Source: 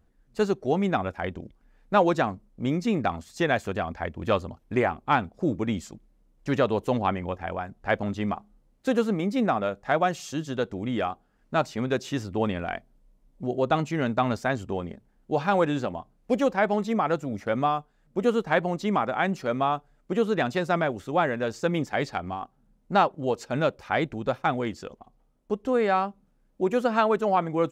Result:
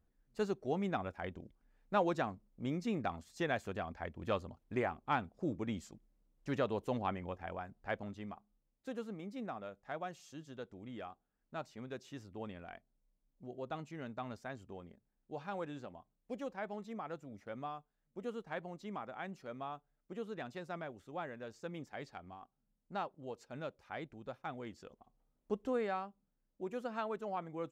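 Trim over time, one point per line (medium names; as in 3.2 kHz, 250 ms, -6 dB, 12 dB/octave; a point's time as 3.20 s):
7.73 s -11.5 dB
8.35 s -19 dB
24.42 s -19 dB
25.59 s -8.5 dB
26.05 s -17 dB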